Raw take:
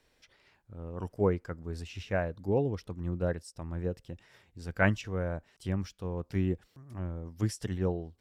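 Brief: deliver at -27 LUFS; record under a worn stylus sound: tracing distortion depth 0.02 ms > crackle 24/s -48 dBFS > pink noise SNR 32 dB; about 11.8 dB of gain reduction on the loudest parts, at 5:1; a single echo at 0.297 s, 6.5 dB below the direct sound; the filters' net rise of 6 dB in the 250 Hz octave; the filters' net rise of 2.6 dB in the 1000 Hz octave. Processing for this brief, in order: bell 250 Hz +8.5 dB; bell 1000 Hz +3 dB; compressor 5:1, threshold -31 dBFS; echo 0.297 s -6.5 dB; tracing distortion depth 0.02 ms; crackle 24/s -48 dBFS; pink noise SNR 32 dB; gain +10 dB

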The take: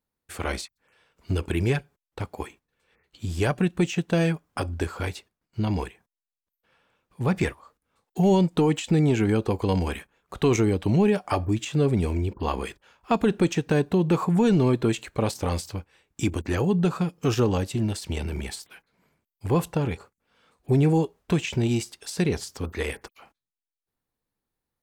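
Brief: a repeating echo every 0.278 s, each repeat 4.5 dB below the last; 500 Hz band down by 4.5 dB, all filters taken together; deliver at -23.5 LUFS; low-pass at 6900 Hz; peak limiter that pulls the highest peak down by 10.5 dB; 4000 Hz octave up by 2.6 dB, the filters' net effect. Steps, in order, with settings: LPF 6900 Hz; bell 500 Hz -6 dB; bell 4000 Hz +4 dB; limiter -23.5 dBFS; feedback echo 0.278 s, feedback 60%, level -4.5 dB; gain +8.5 dB

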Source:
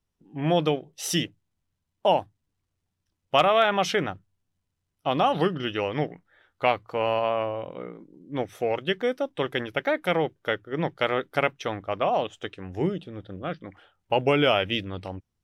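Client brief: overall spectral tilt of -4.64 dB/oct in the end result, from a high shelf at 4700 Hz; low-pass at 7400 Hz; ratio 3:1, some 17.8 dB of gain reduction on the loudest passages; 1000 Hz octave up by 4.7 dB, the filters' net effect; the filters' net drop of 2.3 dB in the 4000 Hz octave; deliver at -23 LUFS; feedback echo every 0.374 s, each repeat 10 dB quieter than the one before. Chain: LPF 7400 Hz; bell 1000 Hz +6.5 dB; bell 4000 Hz -7.5 dB; high shelf 4700 Hz +7.5 dB; compressor 3:1, threshold -38 dBFS; feedback echo 0.374 s, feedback 32%, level -10 dB; gain +15.5 dB

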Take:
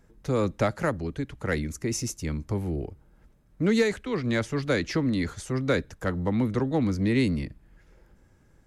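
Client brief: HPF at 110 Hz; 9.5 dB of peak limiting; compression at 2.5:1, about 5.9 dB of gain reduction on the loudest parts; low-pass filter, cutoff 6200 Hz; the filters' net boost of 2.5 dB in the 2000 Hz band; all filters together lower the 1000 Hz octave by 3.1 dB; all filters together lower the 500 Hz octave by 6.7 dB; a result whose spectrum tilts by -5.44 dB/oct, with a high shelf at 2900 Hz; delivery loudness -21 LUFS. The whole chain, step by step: HPF 110 Hz; LPF 6200 Hz; bell 500 Hz -7.5 dB; bell 1000 Hz -4 dB; bell 2000 Hz +7 dB; high shelf 2900 Hz -7 dB; compressor 2.5:1, threshold -30 dBFS; gain +15 dB; limiter -11 dBFS

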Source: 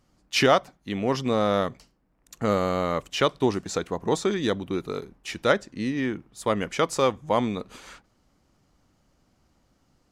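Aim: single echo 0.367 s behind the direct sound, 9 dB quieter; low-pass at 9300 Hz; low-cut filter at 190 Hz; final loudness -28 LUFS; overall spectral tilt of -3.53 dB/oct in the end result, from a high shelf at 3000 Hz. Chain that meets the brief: HPF 190 Hz; LPF 9300 Hz; high shelf 3000 Hz +4.5 dB; echo 0.367 s -9 dB; gain -2.5 dB

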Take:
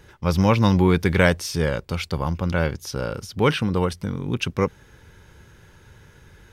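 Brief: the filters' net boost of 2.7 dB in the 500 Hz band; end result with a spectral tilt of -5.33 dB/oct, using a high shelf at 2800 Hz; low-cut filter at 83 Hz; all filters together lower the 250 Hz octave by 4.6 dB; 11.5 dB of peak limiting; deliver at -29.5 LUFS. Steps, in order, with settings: HPF 83 Hz; bell 250 Hz -8.5 dB; bell 500 Hz +5.5 dB; high shelf 2800 Hz -3.5 dB; gain -3 dB; limiter -16 dBFS

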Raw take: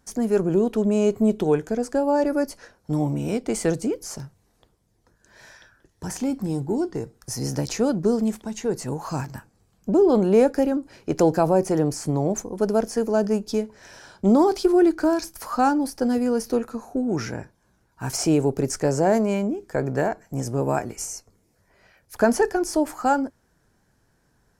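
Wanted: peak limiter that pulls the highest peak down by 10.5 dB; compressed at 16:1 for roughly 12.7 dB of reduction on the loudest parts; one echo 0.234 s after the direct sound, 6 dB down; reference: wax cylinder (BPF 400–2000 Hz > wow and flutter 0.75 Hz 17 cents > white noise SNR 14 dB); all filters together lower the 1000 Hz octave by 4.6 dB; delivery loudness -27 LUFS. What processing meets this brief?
bell 1000 Hz -6 dB; compressor 16:1, threshold -26 dBFS; limiter -26 dBFS; BPF 400–2000 Hz; echo 0.234 s -6 dB; wow and flutter 0.75 Hz 17 cents; white noise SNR 14 dB; gain +12.5 dB

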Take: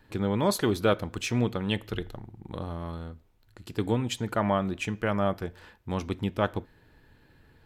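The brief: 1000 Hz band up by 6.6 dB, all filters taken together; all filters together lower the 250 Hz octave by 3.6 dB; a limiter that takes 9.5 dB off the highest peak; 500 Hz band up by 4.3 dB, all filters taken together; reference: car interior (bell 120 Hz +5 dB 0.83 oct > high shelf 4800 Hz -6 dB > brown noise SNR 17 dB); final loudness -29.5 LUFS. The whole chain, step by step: bell 250 Hz -8 dB; bell 500 Hz +5 dB; bell 1000 Hz +7.5 dB; limiter -14.5 dBFS; bell 120 Hz +5 dB 0.83 oct; high shelf 4800 Hz -6 dB; brown noise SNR 17 dB

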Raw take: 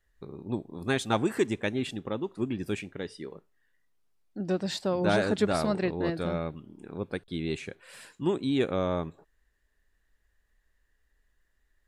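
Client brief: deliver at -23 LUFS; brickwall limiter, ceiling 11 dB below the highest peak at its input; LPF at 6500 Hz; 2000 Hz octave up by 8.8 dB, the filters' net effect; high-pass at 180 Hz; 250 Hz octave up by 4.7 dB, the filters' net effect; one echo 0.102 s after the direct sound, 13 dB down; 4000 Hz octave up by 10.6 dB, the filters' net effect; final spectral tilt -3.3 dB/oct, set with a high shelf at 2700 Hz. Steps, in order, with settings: HPF 180 Hz; LPF 6500 Hz; bell 250 Hz +7.5 dB; bell 2000 Hz +7.5 dB; high shelf 2700 Hz +6 dB; bell 4000 Hz +6 dB; limiter -15.5 dBFS; echo 0.102 s -13 dB; gain +5.5 dB

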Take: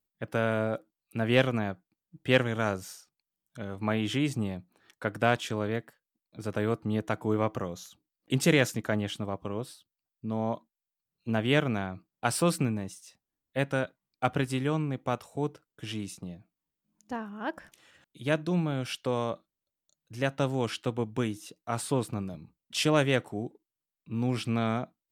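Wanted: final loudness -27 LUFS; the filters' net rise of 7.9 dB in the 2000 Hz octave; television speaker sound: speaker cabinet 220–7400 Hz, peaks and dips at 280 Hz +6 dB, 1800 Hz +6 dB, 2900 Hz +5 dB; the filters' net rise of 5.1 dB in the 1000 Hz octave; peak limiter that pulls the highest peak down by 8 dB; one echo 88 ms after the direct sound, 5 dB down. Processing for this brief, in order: bell 1000 Hz +5.5 dB; bell 2000 Hz +3.5 dB; limiter -13.5 dBFS; speaker cabinet 220–7400 Hz, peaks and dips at 280 Hz +6 dB, 1800 Hz +6 dB, 2900 Hz +5 dB; echo 88 ms -5 dB; gain +1 dB

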